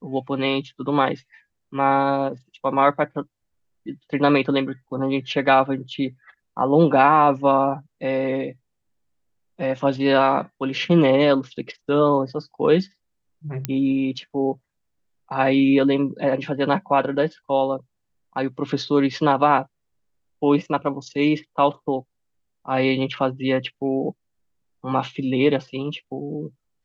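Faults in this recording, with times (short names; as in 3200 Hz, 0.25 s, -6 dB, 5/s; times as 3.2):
13.65 pop -9 dBFS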